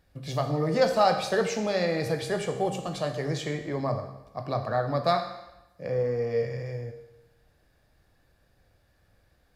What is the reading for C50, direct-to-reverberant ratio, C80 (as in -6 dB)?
8.0 dB, 4.5 dB, 10.0 dB